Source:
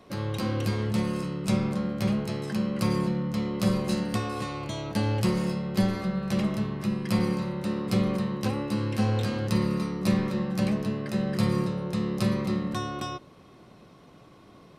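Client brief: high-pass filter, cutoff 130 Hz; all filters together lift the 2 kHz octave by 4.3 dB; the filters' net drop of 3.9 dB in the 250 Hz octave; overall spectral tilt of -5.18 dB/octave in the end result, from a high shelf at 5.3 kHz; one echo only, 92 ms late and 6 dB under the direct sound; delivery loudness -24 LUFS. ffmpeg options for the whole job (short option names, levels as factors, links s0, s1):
-af "highpass=130,equalizer=f=250:t=o:g=-4.5,equalizer=f=2000:t=o:g=6,highshelf=f=5300:g=-4.5,aecho=1:1:92:0.501,volume=2"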